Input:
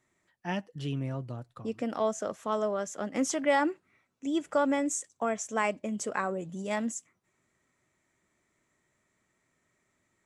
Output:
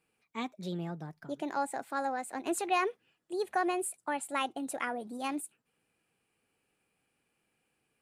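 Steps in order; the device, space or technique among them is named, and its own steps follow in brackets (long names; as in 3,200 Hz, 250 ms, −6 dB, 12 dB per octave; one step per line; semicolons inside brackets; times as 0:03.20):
nightcore (speed change +28%)
level −3.5 dB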